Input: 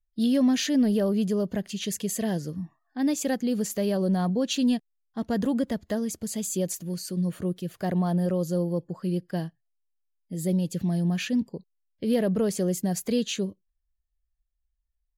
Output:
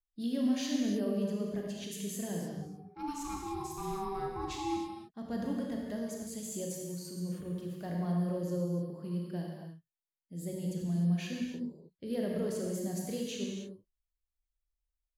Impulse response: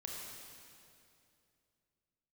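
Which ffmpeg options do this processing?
-filter_complex "[0:a]asplit=3[a][b][c];[a]afade=t=out:st=2.61:d=0.02[d];[b]aeval=exprs='val(0)*sin(2*PI*580*n/s)':c=same,afade=t=in:st=2.61:d=0.02,afade=t=out:st=4.76:d=0.02[e];[c]afade=t=in:st=4.76:d=0.02[f];[d][e][f]amix=inputs=3:normalize=0[g];[1:a]atrim=start_sample=2205,afade=t=out:st=0.37:d=0.01,atrim=end_sample=16758[h];[g][h]afir=irnorm=-1:irlink=0,volume=-7.5dB"

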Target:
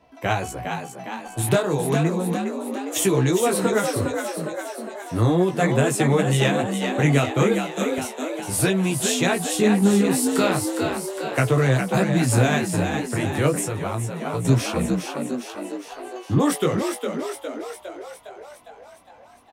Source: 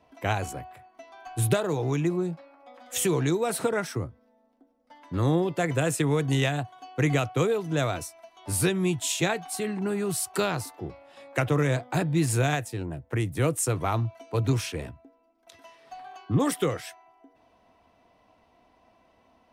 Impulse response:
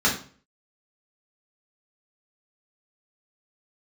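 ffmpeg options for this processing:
-filter_complex "[0:a]asettb=1/sr,asplit=3[a][b][c];[a]atrim=end=9.364[d];[b]atrim=start=9.36:end=10.06,asetpts=PTS-STARTPTS,afade=t=in:d=0.004:c=qsin,afade=t=out:st=0.696:d=0.004:c=qsin,lowshelf=f=350:g=9[e];[c]atrim=start=10.056[f];[d][e]acrossfade=d=0.004:c1=hsin:c2=qsin[g];[g][f]acrossfade=d=0.004:c1=qsin:c2=hsin,flanger=delay=15:depth=6.2:speed=0.34,asettb=1/sr,asplit=3[h][i][j];[h]atrim=end=7.554[k];[i]atrim=start=7.55:end=7.98,asetpts=PTS-STARTPTS,afade=t=in:d=0.004:c=qsin,afade=t=out:st=0.426:d=0.004:c=qsin,aderivative[l];[j]atrim=start=7.976[m];[k][l]acrossfade=d=0.004:c1=hsin:c2=qsin[n];[n][m]acrossfade=d=0.004:c1=qsin:c2=hsin,asplit=9[o][p][q][r][s][t][u][v][w];[p]adelay=408,afreqshift=60,volume=-6dB[x];[q]adelay=816,afreqshift=120,volume=-10.4dB[y];[r]adelay=1224,afreqshift=180,volume=-14.9dB[z];[s]adelay=1632,afreqshift=240,volume=-19.3dB[aa];[t]adelay=2040,afreqshift=300,volume=-23.7dB[ab];[u]adelay=2448,afreqshift=360,volume=-28.2dB[ac];[v]adelay=2856,afreqshift=420,volume=-32.6dB[ad];[w]adelay=3264,afreqshift=480,volume=-37.1dB[ae];[o][x][y][z][aa][ab][ac][ad][ae]amix=inputs=9:normalize=0,asettb=1/sr,asplit=3[af][ag][ah];[af]atrim=end=13.584[ai];[ag]atrim=start=13.58:end=14.45,asetpts=PTS-STARTPTS,afade=t=in:d=0.004:c=qsin,afade=t=out:st=0.866:d=0.004:c=qsin,acompressor=threshold=-31dB:ratio=6[aj];[ah]atrim=start=14.446[ak];[ai][aj]acrossfade=d=0.004:c1=hsin:c2=qsin[al];[al][ak]acrossfade=d=0.004:c1=qsin:c2=hsin,volume=7.5dB"

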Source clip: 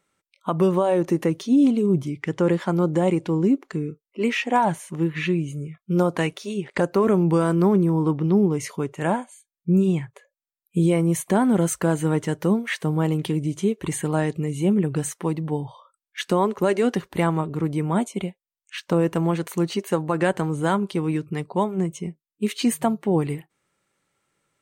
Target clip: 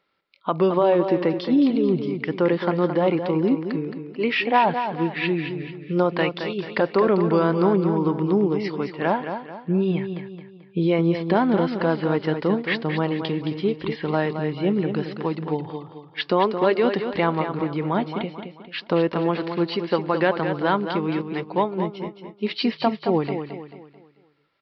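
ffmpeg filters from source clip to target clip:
-filter_complex "[0:a]bass=f=250:g=-8,treble=f=4k:g=3,asplit=2[a][b];[b]aecho=0:1:219|438|657|876|1095:0.398|0.159|0.0637|0.0255|0.0102[c];[a][c]amix=inputs=2:normalize=0,aresample=11025,aresample=44100,volume=2dB"

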